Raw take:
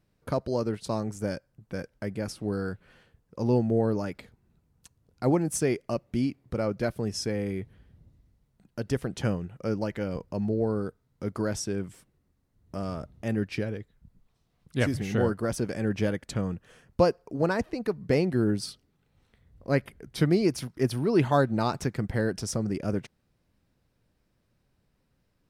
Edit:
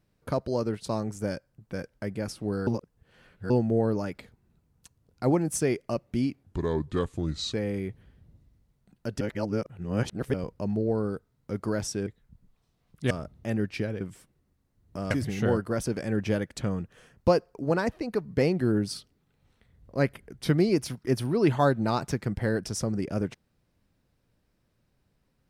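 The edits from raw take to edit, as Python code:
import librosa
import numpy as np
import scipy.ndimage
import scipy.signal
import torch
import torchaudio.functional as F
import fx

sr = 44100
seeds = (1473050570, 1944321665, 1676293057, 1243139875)

y = fx.edit(x, sr, fx.reverse_span(start_s=2.67, length_s=0.83),
    fx.speed_span(start_s=6.43, length_s=0.83, speed=0.75),
    fx.reverse_span(start_s=8.93, length_s=1.13),
    fx.swap(start_s=11.79, length_s=1.1, other_s=13.79, other_length_s=1.04), tone=tone)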